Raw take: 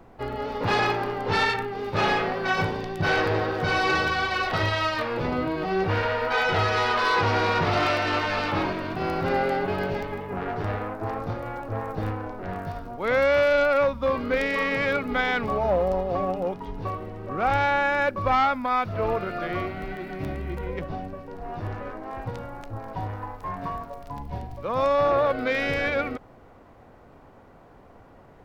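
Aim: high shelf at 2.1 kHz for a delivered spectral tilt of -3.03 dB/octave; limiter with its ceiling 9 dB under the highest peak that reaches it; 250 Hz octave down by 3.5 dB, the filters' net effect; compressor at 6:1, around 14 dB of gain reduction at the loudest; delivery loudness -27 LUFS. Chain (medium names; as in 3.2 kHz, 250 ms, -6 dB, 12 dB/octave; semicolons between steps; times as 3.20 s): peaking EQ 250 Hz -5 dB; treble shelf 2.1 kHz +7.5 dB; compression 6:1, threshold -32 dBFS; trim +9.5 dB; peak limiter -17.5 dBFS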